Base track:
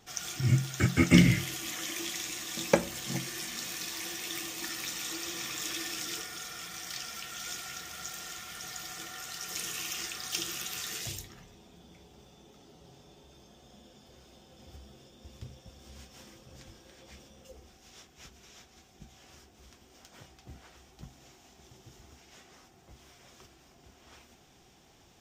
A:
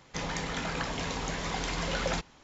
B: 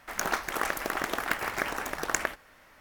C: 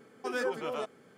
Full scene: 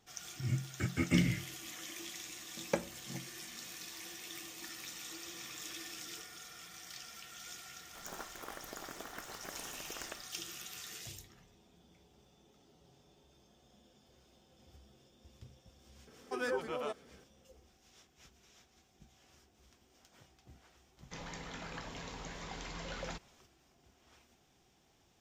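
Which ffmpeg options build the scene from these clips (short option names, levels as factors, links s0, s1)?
-filter_complex "[0:a]volume=0.335[s0];[2:a]equalizer=f=3500:w=0.45:g=-11.5,atrim=end=2.8,asetpts=PTS-STARTPTS,volume=0.211,afade=t=in:d=0.004:c=hsin,afade=t=out:st=2.796:d=0.004:c=hsin,adelay=7870[s1];[3:a]atrim=end=1.17,asetpts=PTS-STARTPTS,volume=0.668,afade=t=in:d=0.004:c=hsin,afade=t=out:st=1.166:d=0.004:c=hsin,adelay=16070[s2];[1:a]atrim=end=2.43,asetpts=PTS-STARTPTS,volume=0.251,afade=t=in:d=0.004:c=hsin,afade=t=out:st=2.426:d=0.004:c=hsin,adelay=20970[s3];[s0][s1][s2][s3]amix=inputs=4:normalize=0"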